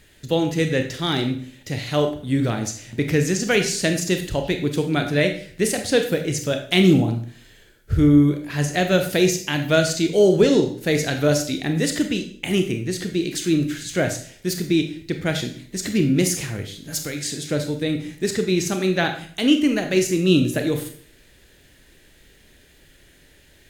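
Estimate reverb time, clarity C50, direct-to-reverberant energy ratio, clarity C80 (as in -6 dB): 0.55 s, 9.0 dB, 5.5 dB, 12.5 dB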